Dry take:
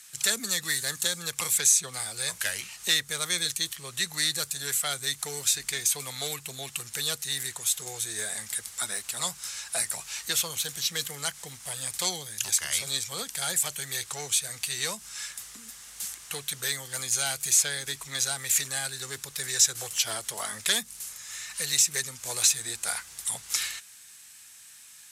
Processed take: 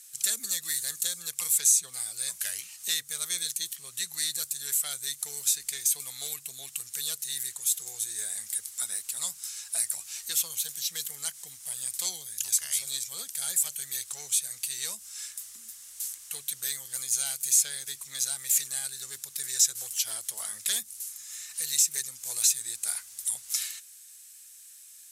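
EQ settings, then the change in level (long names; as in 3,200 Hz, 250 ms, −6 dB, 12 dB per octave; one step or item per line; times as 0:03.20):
first-order pre-emphasis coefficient 0.8
0.0 dB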